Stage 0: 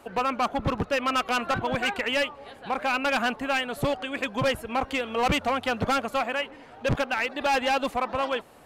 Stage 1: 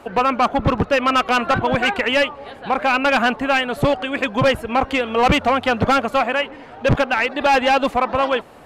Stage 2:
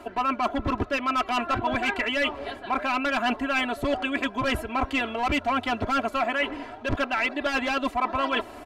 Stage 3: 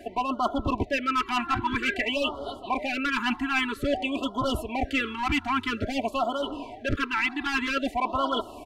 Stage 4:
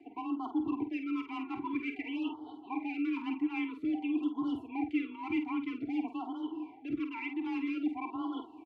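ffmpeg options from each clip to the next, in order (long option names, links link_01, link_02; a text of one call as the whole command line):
ffmpeg -i in.wav -af "highshelf=frequency=5500:gain=-9.5,volume=9dB" out.wav
ffmpeg -i in.wav -af "aecho=1:1:3:0.89,areverse,acompressor=threshold=-23dB:ratio=6,areverse" out.wav
ffmpeg -i in.wav -af "afftfilt=real='re*(1-between(b*sr/1024,500*pow(2100/500,0.5+0.5*sin(2*PI*0.51*pts/sr))/1.41,500*pow(2100/500,0.5+0.5*sin(2*PI*0.51*pts/sr))*1.41))':imag='im*(1-between(b*sr/1024,500*pow(2100/500,0.5+0.5*sin(2*PI*0.51*pts/sr))/1.41,500*pow(2100/500,0.5+0.5*sin(2*PI*0.51*pts/sr))*1.41))':win_size=1024:overlap=0.75" out.wav
ffmpeg -i in.wav -filter_complex "[0:a]afreqshift=26,asplit=3[link_01][link_02][link_03];[link_01]bandpass=frequency=300:width_type=q:width=8,volume=0dB[link_04];[link_02]bandpass=frequency=870:width_type=q:width=8,volume=-6dB[link_05];[link_03]bandpass=frequency=2240:width_type=q:width=8,volume=-9dB[link_06];[link_04][link_05][link_06]amix=inputs=3:normalize=0,asplit=2[link_07][link_08];[link_08]adelay=49,volume=-8.5dB[link_09];[link_07][link_09]amix=inputs=2:normalize=0" out.wav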